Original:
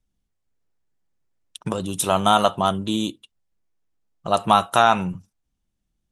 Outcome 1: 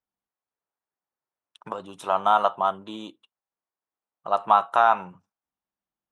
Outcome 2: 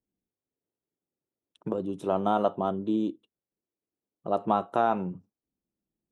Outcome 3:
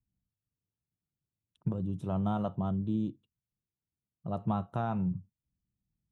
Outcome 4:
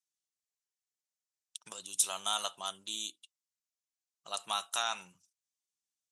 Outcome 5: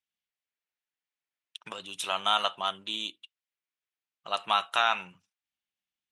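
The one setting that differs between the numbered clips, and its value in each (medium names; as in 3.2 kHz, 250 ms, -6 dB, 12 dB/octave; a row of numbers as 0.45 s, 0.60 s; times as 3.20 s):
band-pass filter, frequency: 1 kHz, 360 Hz, 120 Hz, 6.8 kHz, 2.6 kHz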